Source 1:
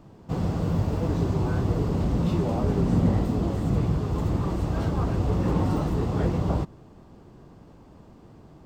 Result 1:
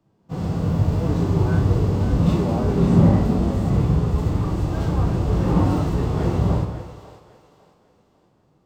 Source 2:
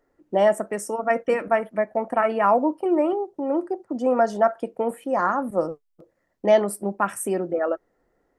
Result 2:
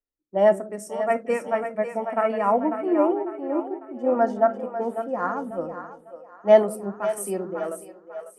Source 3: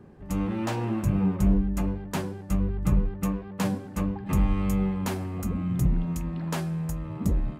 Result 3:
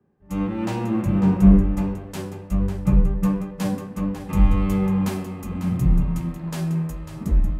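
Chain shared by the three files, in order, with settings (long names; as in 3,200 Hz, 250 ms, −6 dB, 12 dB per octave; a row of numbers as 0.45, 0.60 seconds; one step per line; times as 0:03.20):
echo with a time of its own for lows and highs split 430 Hz, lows 176 ms, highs 548 ms, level −7 dB
harmonic and percussive parts rebalanced percussive −9 dB
multiband upward and downward expander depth 70%
normalise the peak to −3 dBFS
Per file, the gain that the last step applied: +6.5, −1.5, +5.5 decibels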